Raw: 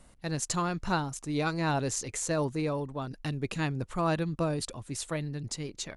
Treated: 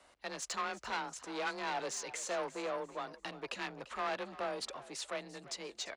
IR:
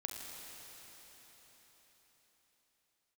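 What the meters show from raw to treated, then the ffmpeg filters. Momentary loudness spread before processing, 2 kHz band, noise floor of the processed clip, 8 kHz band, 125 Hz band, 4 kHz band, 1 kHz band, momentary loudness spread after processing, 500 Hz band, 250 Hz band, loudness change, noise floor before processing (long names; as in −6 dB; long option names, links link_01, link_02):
7 LU, −3.5 dB, −65 dBFS, −7.5 dB, −26.0 dB, −3.0 dB, −5.0 dB, 6 LU, −6.5 dB, −15.5 dB, −8.0 dB, −57 dBFS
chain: -filter_complex "[0:a]afreqshift=27,asoftclip=type=tanh:threshold=-30dB,acrossover=split=410 6400:gain=0.0631 1 0.178[link_01][link_02][link_03];[link_01][link_02][link_03]amix=inputs=3:normalize=0,asplit=4[link_04][link_05][link_06][link_07];[link_05]adelay=343,afreqshift=39,volume=-16.5dB[link_08];[link_06]adelay=686,afreqshift=78,volume=-25.6dB[link_09];[link_07]adelay=1029,afreqshift=117,volume=-34.7dB[link_10];[link_04][link_08][link_09][link_10]amix=inputs=4:normalize=0,volume=1dB"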